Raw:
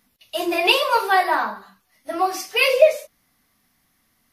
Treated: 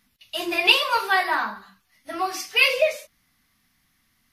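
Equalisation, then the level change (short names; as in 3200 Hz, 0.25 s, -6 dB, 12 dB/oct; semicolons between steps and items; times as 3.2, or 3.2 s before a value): low shelf 180 Hz -4 dB; bell 550 Hz -13 dB 2.4 oct; high shelf 5100 Hz -10 dB; +5.5 dB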